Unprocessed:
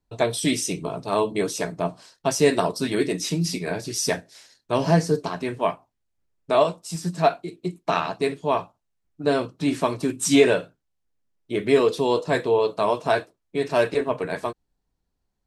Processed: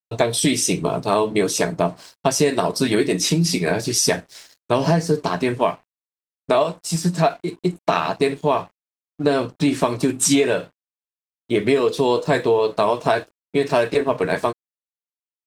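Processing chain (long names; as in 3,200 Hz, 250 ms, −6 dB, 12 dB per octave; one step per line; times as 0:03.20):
downward compressor, threshold −23 dBFS, peak gain reduction 12.5 dB
dead-zone distortion −56.5 dBFS
level +9 dB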